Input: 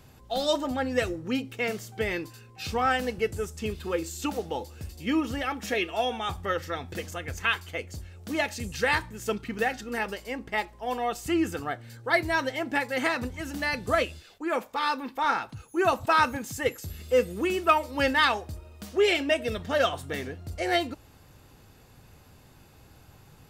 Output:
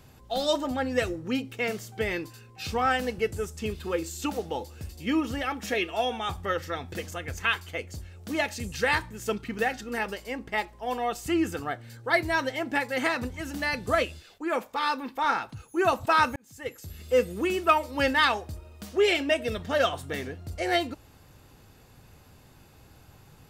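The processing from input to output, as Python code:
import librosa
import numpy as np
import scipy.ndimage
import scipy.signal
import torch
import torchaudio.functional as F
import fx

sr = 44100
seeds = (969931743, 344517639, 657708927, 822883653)

y = fx.edit(x, sr, fx.fade_in_span(start_s=16.36, length_s=0.8), tone=tone)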